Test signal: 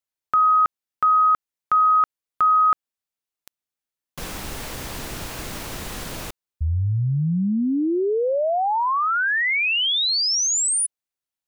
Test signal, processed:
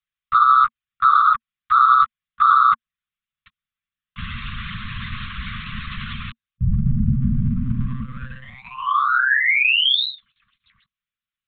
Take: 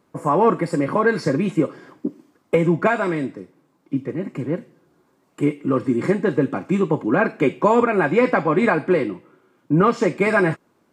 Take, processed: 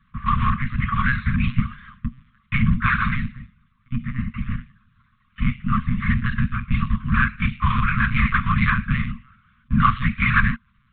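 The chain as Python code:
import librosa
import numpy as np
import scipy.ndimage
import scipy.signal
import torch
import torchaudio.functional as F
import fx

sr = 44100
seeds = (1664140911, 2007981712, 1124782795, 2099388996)

p1 = fx.whisperise(x, sr, seeds[0])
p2 = np.clip(10.0 ** (21.0 / 20.0) * p1, -1.0, 1.0) / 10.0 ** (21.0 / 20.0)
p3 = p1 + (p2 * librosa.db_to_amplitude(-5.0))
p4 = fx.lpc_monotone(p3, sr, seeds[1], pitch_hz=130.0, order=16)
p5 = scipy.signal.sosfilt(scipy.signal.ellip(4, 1.0, 40, [230.0, 1100.0], 'bandstop', fs=sr, output='sos'), p4)
y = p5 * librosa.db_to_amplitude(1.5)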